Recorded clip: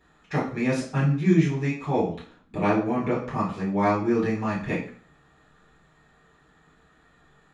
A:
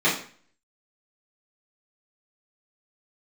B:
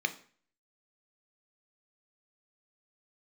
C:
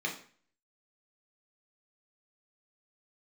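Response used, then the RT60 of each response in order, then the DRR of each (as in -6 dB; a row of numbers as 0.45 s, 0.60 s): A; 0.45 s, 0.45 s, 0.45 s; -10.0 dB, 8.5 dB, -1.0 dB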